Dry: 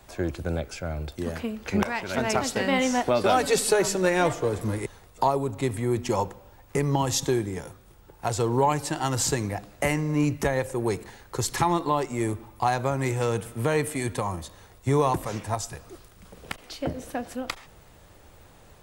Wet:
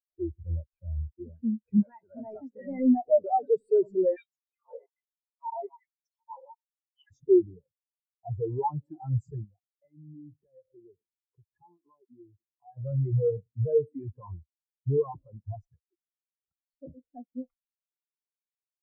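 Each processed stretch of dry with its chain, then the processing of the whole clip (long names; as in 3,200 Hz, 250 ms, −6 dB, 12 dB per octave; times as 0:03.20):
0:04.16–0:07.11: feedback delay that plays each chunk backwards 150 ms, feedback 52%, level −7.5 dB + auto-filter high-pass sine 1.2 Hz 630–5,600 Hz
0:09.44–0:12.77: downward compressor, threshold −34 dBFS + single-tap delay 273 ms −23.5 dB
whole clip: high-shelf EQ 4,200 Hz −4.5 dB; leveller curve on the samples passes 5; every bin expanded away from the loudest bin 4 to 1; level −3.5 dB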